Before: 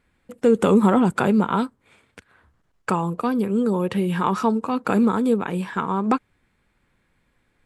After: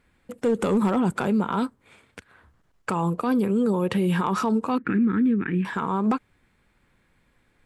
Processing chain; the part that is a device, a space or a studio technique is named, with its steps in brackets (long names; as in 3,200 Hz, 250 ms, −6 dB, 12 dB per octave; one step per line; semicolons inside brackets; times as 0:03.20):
0:04.78–0:05.65: drawn EQ curve 210 Hz 0 dB, 330 Hz +3 dB, 620 Hz −27 dB, 1,000 Hz −19 dB, 1,800 Hz +5 dB, 5,700 Hz −29 dB
clipper into limiter (hard clipping −10 dBFS, distortion −24 dB; brickwall limiter −17.5 dBFS, peak gain reduction 7.5 dB)
level +2 dB